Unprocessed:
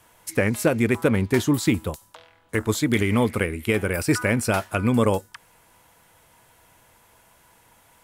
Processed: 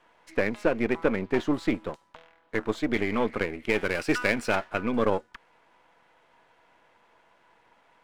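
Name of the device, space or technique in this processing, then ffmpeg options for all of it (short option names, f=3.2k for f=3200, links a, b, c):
crystal radio: -filter_complex "[0:a]highpass=270,lowpass=2.7k,aeval=exprs='if(lt(val(0),0),0.447*val(0),val(0))':c=same,asplit=3[a][b][c];[a]afade=t=out:st=3.69:d=0.02[d];[b]highshelf=f=2.7k:g=10,afade=t=in:st=3.69:d=0.02,afade=t=out:st=4.54:d=0.02[e];[c]afade=t=in:st=4.54:d=0.02[f];[d][e][f]amix=inputs=3:normalize=0"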